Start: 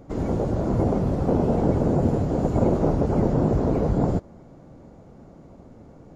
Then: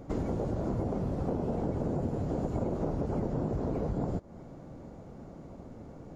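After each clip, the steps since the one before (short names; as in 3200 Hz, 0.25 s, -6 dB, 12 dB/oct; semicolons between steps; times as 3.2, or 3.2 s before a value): compressor 6:1, threshold -29 dBFS, peak gain reduction 13 dB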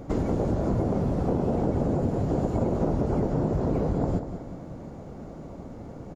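feedback echo 0.191 s, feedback 46%, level -10 dB; gain +6 dB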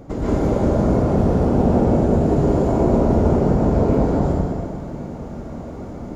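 plate-style reverb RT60 1.8 s, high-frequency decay 0.9×, pre-delay 0.105 s, DRR -8.5 dB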